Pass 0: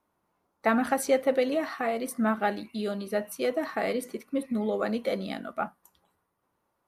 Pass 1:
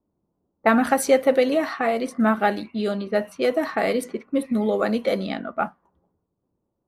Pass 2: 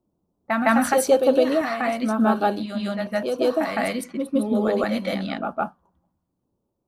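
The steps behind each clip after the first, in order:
level-controlled noise filter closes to 360 Hz, open at -25.5 dBFS; trim +6.5 dB
LFO notch square 0.93 Hz 430–2000 Hz; reverse echo 160 ms -4.5 dB

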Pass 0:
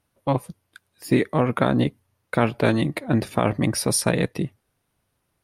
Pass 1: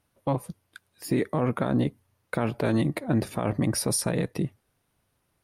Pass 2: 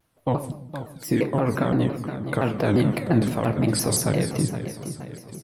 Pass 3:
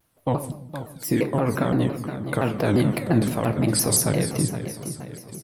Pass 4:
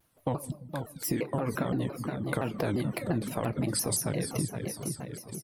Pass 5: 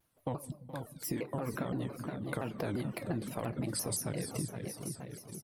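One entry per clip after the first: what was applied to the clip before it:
peak limiter -15 dBFS, peak gain reduction 9.5 dB; dynamic bell 2.9 kHz, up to -5 dB, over -44 dBFS, Q 0.75
feedback delay 466 ms, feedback 49%, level -10.5 dB; simulated room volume 210 m³, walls mixed, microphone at 0.43 m; vibrato with a chosen wave saw down 5.8 Hz, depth 250 cents; trim +2.5 dB
treble shelf 8.3 kHz +8 dB
reverb removal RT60 0.52 s; compression, threshold -25 dBFS, peak gain reduction 10.5 dB; trim -1.5 dB
delay 422 ms -15.5 dB; trim -6 dB

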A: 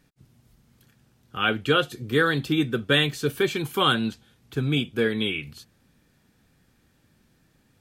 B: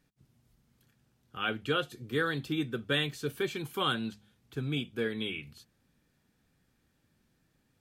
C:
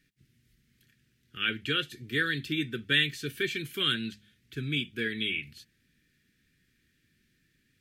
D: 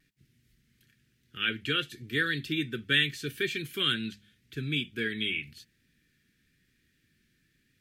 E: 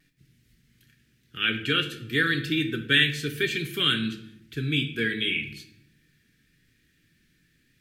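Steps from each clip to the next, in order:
de-hum 103.7 Hz, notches 2; trim -9 dB
FFT filter 380 Hz 0 dB, 850 Hz -24 dB, 1.8 kHz +9 dB, 7.5 kHz +2 dB
vibrato 0.92 Hz 22 cents
simulated room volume 180 m³, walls mixed, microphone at 0.44 m; trim +4 dB

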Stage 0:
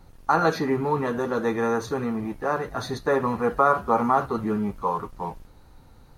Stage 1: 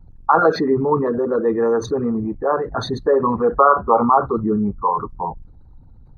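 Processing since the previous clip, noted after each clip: resonances exaggerated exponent 2; trim +6.5 dB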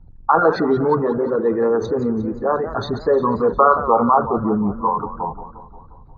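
distance through air 130 m; modulated delay 177 ms, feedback 59%, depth 184 cents, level -13 dB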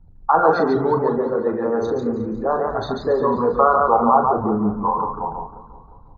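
on a send: loudspeakers at several distances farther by 13 m -7 dB, 49 m -4 dB; on the sum: dynamic bell 740 Hz, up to +5 dB, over -29 dBFS, Q 2.4; trim -4 dB

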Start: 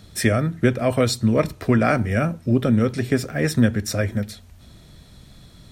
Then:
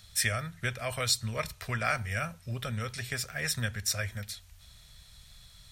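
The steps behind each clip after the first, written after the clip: amplifier tone stack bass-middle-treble 10-0-10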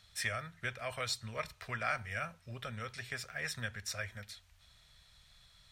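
overdrive pedal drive 6 dB, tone 2.6 kHz, clips at -13.5 dBFS; trim -5.5 dB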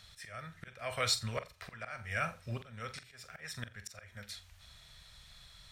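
slow attack 438 ms; flutter echo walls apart 7.5 m, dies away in 0.23 s; trim +6 dB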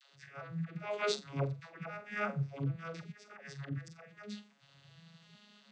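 vocoder on a broken chord minor triad, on C#3, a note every 373 ms; phase dispersion lows, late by 138 ms, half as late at 360 Hz; trim +2.5 dB

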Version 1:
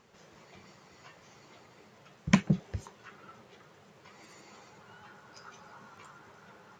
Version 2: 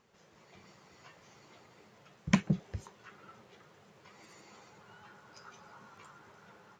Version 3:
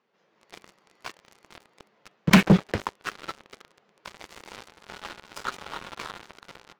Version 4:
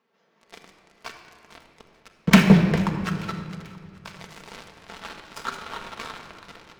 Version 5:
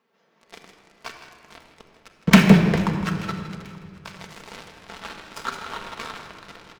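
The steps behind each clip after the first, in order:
level rider gain up to 4 dB; trim -6.5 dB
three-band isolator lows -24 dB, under 180 Hz, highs -23 dB, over 5.1 kHz; waveshaping leveller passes 5; trim +6 dB
thinning echo 441 ms, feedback 60%, level -22.5 dB; simulated room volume 3500 m³, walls mixed, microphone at 1.6 m
delay 160 ms -12 dB; trim +1.5 dB

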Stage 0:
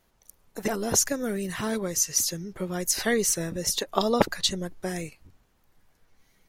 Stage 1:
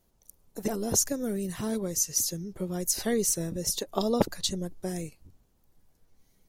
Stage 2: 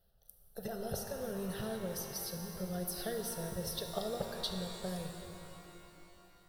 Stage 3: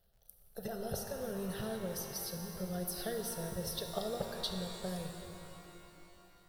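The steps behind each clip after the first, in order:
peaking EQ 1.8 kHz -11 dB 2.4 oct
compression, threshold -30 dBFS, peak gain reduction 12.5 dB; static phaser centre 1.5 kHz, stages 8; pitch-shifted reverb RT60 3.2 s, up +12 st, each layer -8 dB, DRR 4 dB; trim -1.5 dB
crackle 73 per s -61 dBFS

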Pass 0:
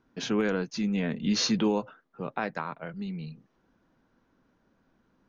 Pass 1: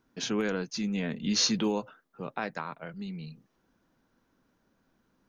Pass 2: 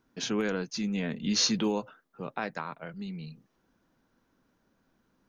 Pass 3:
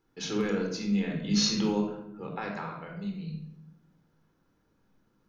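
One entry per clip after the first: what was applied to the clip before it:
treble shelf 4.9 kHz +11 dB; trim -3 dB
no audible change
simulated room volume 2200 m³, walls furnished, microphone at 4.1 m; trim -5 dB

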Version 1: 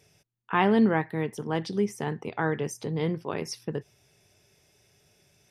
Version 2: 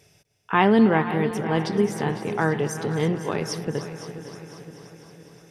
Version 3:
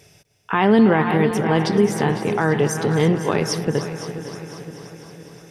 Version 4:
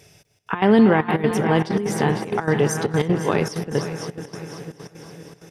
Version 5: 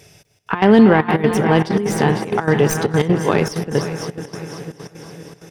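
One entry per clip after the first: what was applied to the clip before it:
backward echo that repeats 262 ms, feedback 72%, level -13.5 dB; on a send: multi-head delay 250 ms, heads first and second, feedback 62%, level -17 dB; on the sum: trim +4.5 dB
peak limiter -13 dBFS, peak gain reduction 7.5 dB; trim +6.5 dB
trance gate "xxxxx.x." 194 bpm -12 dB
tracing distortion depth 0.035 ms; trim +4 dB

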